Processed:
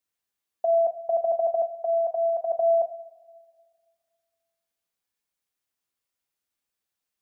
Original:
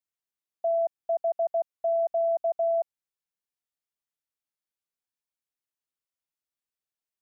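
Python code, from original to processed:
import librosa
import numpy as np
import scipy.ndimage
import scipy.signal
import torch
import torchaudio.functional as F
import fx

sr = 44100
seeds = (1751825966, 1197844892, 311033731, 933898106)

y = fx.highpass(x, sr, hz=fx.line((1.75, 590.0), (2.5, 780.0)), slope=6, at=(1.75, 2.5), fade=0.02)
y = fx.echo_feedback(y, sr, ms=104, feedback_pct=52, wet_db=-22.5)
y = fx.rev_double_slope(y, sr, seeds[0], early_s=0.32, late_s=1.9, knee_db=-19, drr_db=4.0)
y = y * librosa.db_to_amplitude(5.5)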